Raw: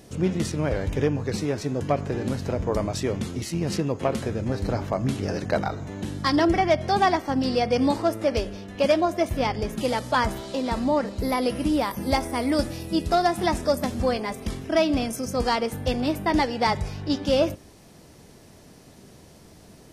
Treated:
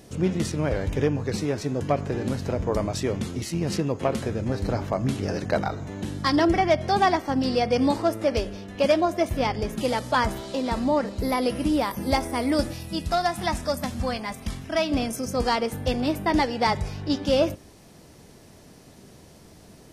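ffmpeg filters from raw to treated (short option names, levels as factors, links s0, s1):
-filter_complex "[0:a]asettb=1/sr,asplit=3[s0][s1][s2];[s0]atrim=end=12.734[s3];[s1]atrim=start=12.73:end=14.92,asetpts=PTS-STARTPTS,afade=t=in:d=0.004:c=qsin,afade=t=out:st=2.186:d=0.004:c=qsin,equalizer=f=400:w=1.5:g=-10.5[s4];[s2]atrim=start=14.916[s5];[s3][s4]acrossfade=d=0.004:c1=hsin:c2=qsin[s6];[s6][s5]acrossfade=d=0.004:c1=qsin:c2=hsin"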